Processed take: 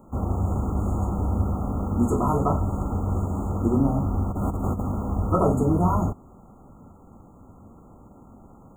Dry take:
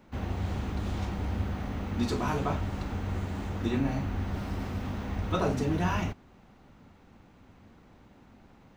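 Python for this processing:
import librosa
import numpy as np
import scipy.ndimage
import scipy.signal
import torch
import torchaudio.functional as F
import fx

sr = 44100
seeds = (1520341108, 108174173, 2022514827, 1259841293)

y = fx.over_compress(x, sr, threshold_db=-35.0, ratio=-0.5, at=(4.3, 4.8), fade=0.02)
y = fx.brickwall_bandstop(y, sr, low_hz=1400.0, high_hz=6500.0)
y = y * 10.0 ** (7.5 / 20.0)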